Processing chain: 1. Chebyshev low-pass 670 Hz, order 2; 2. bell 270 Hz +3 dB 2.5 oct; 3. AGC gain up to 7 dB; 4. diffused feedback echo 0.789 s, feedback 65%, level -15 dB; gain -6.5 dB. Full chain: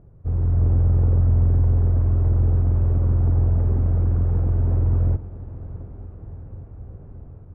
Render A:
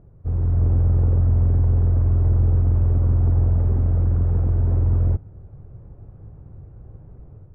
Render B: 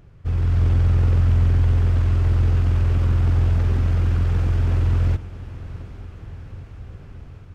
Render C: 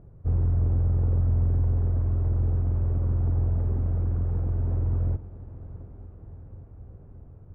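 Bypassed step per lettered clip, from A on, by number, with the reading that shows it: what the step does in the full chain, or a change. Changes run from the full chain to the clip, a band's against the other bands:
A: 4, echo-to-direct -12.5 dB to none; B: 1, 1 kHz band +4.5 dB; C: 3, momentary loudness spread change -1 LU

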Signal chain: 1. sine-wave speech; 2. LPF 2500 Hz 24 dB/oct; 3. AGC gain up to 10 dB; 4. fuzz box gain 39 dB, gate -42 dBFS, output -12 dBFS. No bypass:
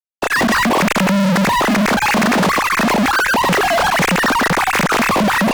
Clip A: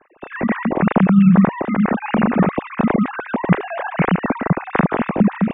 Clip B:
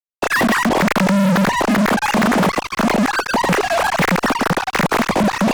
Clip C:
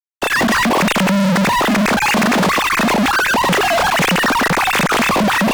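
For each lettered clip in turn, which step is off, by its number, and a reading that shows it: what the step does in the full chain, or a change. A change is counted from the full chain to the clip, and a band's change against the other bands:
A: 4, 2 kHz band -10.5 dB; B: 3, crest factor change +1.5 dB; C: 2, 4 kHz band +2.0 dB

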